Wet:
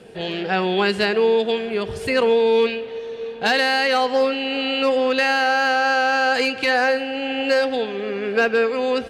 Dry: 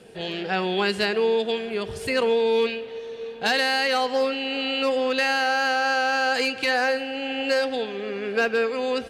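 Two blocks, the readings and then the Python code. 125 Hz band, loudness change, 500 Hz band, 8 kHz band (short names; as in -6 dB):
n/a, +4.0 dB, +4.5 dB, 0.0 dB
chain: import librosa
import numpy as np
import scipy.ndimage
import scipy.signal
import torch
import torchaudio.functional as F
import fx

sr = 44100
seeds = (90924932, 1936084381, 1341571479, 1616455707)

y = fx.high_shelf(x, sr, hz=4400.0, db=-6.0)
y = y * librosa.db_to_amplitude(4.5)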